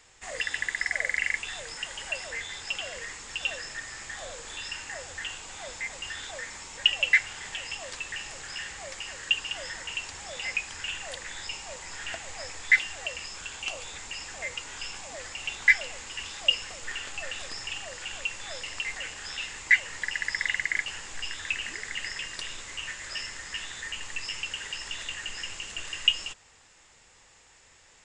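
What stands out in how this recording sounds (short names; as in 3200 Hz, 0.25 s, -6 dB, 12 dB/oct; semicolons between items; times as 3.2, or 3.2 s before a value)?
noise floor -58 dBFS; spectral tilt +0.5 dB/oct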